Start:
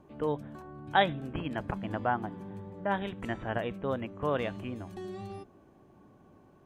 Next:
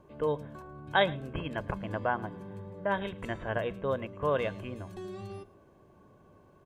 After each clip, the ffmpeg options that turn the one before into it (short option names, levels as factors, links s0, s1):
-af "bandreject=f=60:t=h:w=6,bandreject=f=120:t=h:w=6,aecho=1:1:1.9:0.4,aecho=1:1:109:0.0841"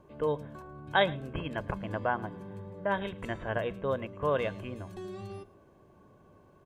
-af anull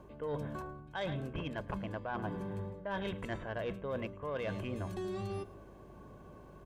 -af "areverse,acompressor=threshold=0.0126:ratio=16,areverse,asoftclip=type=tanh:threshold=0.0224,aeval=exprs='val(0)+0.000708*(sin(2*PI*50*n/s)+sin(2*PI*2*50*n/s)/2+sin(2*PI*3*50*n/s)/3+sin(2*PI*4*50*n/s)/4+sin(2*PI*5*50*n/s)/5)':c=same,volume=1.78"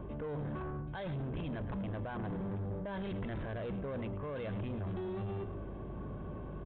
-af "alimiter=level_in=5.96:limit=0.0631:level=0:latency=1:release=11,volume=0.168,lowshelf=f=380:g=9,aresample=8000,asoftclip=type=tanh:threshold=0.01,aresample=44100,volume=1.88"